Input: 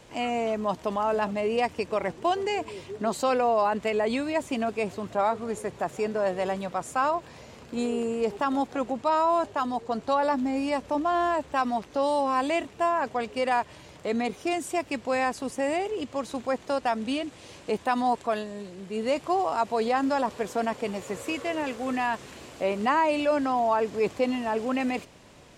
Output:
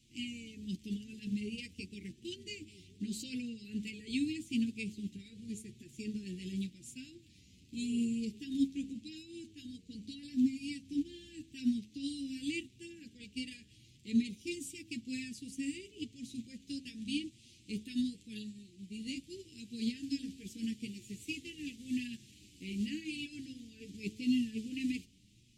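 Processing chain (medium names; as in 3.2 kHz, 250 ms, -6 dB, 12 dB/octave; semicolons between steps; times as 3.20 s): hum 60 Hz, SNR 31 dB; inverse Chebyshev band-stop 610–1300 Hz, stop band 60 dB; de-hum 53.89 Hz, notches 34; flange 0.86 Hz, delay 8.1 ms, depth 3.2 ms, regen +11%; upward expansion 1.5:1, over -49 dBFS; trim +3.5 dB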